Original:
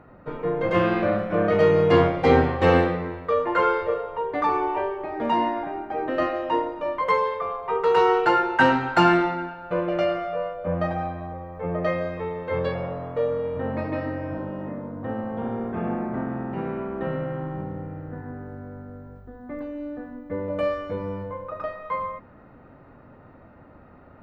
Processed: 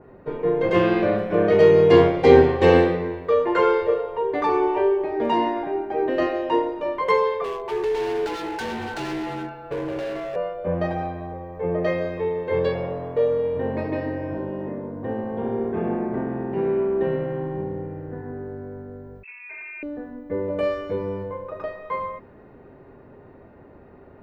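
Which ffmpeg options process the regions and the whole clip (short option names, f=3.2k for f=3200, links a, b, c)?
-filter_complex "[0:a]asettb=1/sr,asplit=3[a][b][c];[a]atrim=end=7.444[d];[b]atrim=start=7.44:end=10.36,asetpts=PTS-STARTPTS,afade=t=in:d=0.004:c=qsin,afade=t=out:st=2.916:d=0.004:c=qsin,acompressor=threshold=-23dB:ratio=2.5:attack=3.2:release=140:knee=1:detection=peak,afreqshift=-33,volume=28dB,asoftclip=hard,volume=-28dB[e];[c]atrim=start=10.356[f];[d][e]acrossfade=d=0.004:c1=hsin:c2=qsin[g];[g][f]acrossfade=d=0.004:c1=qsin:c2=hsin,asettb=1/sr,asplit=3[h][i][j];[h]atrim=end=19.234[k];[i]atrim=start=19.23:end=19.83,asetpts=PTS-STARTPTS,afade=t=in:d=0.004:c=qsin,afade=t=out:st=0.596:d=0.004:c=qsin,volume=35.5dB,asoftclip=hard,volume=-35.5dB,lowpass=f=2.3k:t=q:w=0.5098,lowpass=f=2.3k:t=q:w=0.6013,lowpass=f=2.3k:t=q:w=0.9,lowpass=f=2.3k:t=q:w=2.563,afreqshift=-2700[l];[j]atrim=start=19.826[m];[k][l]acrossfade=d=0.004:c1=hsin:c2=qsin[n];[n][m]acrossfade=d=0.004:c1=qsin:c2=hsin,equalizer=f=400:t=o:w=0.33:g=12,bandreject=f=1.3k:w=6.1,adynamicequalizer=threshold=0.0224:dfrequency=2500:dqfactor=0.7:tfrequency=2500:tqfactor=0.7:attack=5:release=100:ratio=0.375:range=2:mode=boostabove:tftype=highshelf"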